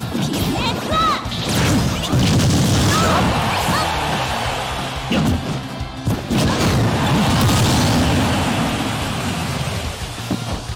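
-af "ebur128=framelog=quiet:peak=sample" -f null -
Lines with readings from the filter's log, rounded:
Integrated loudness:
  I:         -18.1 LUFS
  Threshold: -28.1 LUFS
Loudness range:
  LRA:         3.1 LU
  Threshold: -37.7 LUFS
  LRA low:   -19.8 LUFS
  LRA high:  -16.7 LUFS
Sample peak:
  Peak:      -12.1 dBFS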